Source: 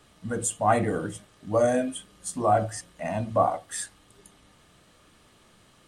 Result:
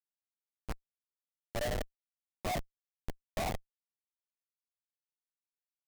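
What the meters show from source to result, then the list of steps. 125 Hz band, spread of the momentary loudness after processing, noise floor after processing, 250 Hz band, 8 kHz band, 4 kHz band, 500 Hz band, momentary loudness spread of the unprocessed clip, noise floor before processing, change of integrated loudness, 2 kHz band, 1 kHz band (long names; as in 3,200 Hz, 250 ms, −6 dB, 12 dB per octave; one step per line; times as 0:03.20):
−12.5 dB, 14 LU, below −85 dBFS, −16.5 dB, −17.5 dB, −3.5 dB, −16.5 dB, 12 LU, −59 dBFS, −13.0 dB, −9.5 dB, −17.0 dB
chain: four-comb reverb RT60 2.1 s, combs from 25 ms, DRR 6 dB
band-pass filter sweep 2,000 Hz → 790 Hz, 0:00.92–0:01.45
notch filter 2,900 Hz, Q 27
comparator with hysteresis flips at −24 dBFS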